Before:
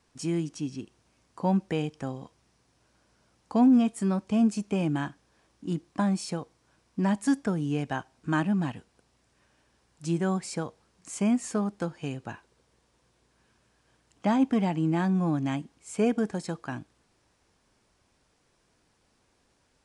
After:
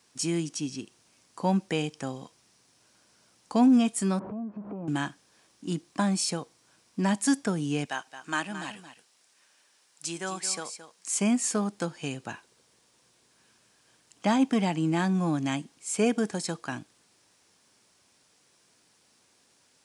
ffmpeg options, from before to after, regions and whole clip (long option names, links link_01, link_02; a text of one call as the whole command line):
ffmpeg -i in.wav -filter_complex "[0:a]asettb=1/sr,asplit=3[link_01][link_02][link_03];[link_01]atrim=end=4.194[link_04];[link_02]atrim=start=4.19:end=4.88,asetpts=PTS-STARTPTS,afade=type=in:duration=0.004:curve=qsin,afade=type=out:start_time=0.686:duration=0.004:curve=qsin,aeval=exprs='val(0)+0.5*0.0237*sgn(val(0))':channel_layout=same,lowpass=frequency=1100:width=0.5412,lowpass=frequency=1100:width=1.3066,acompressor=threshold=-36dB:ratio=4:attack=3.2:release=140:knee=1:detection=peak[link_05];[link_03]atrim=start=4.876[link_06];[link_04][link_05]acrossfade=duration=0.004:curve1=hsin:curve2=qsin[link_07];[link_07][link_06]acrossfade=duration=0.004:curve1=qsin:curve2=hsin,asettb=1/sr,asplit=3[link_08][link_09][link_10];[link_08]atrim=end=7.854[link_11];[link_09]atrim=start=7.85:end=11.12,asetpts=PTS-STARTPTS,afade=type=in:duration=0.004:curve=qsin,afade=type=out:start_time=3.266:duration=0.004:curve=qsin,highpass=frequency=850:poles=1,aecho=1:1:220:0.266,atrim=end_sample=144207[link_12];[link_10]atrim=start=11.116[link_13];[link_11][link_12]acrossfade=duration=0.004:curve1=hsin:curve2=qsin[link_14];[link_14][link_13]acrossfade=duration=0.004:curve1=qsin:curve2=hsin,highpass=130,highshelf=frequency=2600:gain=11" out.wav